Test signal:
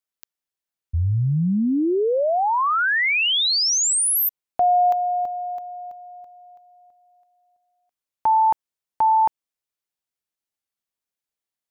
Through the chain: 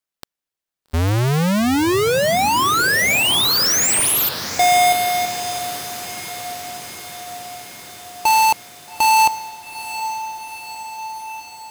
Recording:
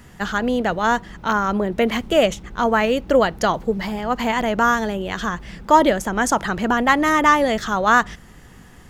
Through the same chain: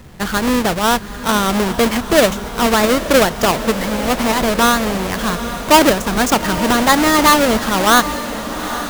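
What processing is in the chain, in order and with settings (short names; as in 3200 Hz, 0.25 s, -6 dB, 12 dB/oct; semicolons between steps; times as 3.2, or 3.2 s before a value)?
half-waves squared off; diffused feedback echo 0.847 s, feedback 67%, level -12 dB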